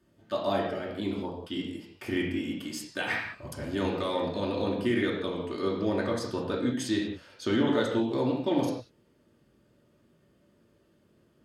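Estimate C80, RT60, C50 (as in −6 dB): 5.5 dB, non-exponential decay, 3.0 dB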